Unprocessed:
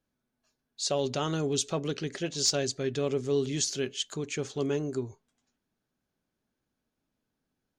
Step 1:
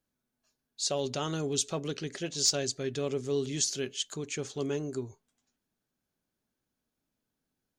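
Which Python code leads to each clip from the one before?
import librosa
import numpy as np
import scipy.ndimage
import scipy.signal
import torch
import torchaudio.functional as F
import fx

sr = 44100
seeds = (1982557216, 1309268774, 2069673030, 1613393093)

y = fx.high_shelf(x, sr, hz=5600.0, db=6.5)
y = y * librosa.db_to_amplitude(-3.0)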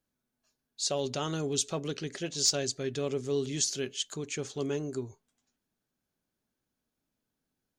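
y = x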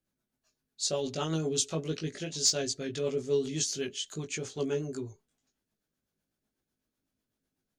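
y = fx.doubler(x, sr, ms=19.0, db=-3)
y = fx.rotary(y, sr, hz=8.0)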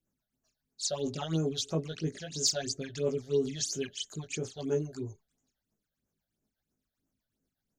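y = fx.phaser_stages(x, sr, stages=8, low_hz=300.0, high_hz=4100.0, hz=3.0, feedback_pct=45)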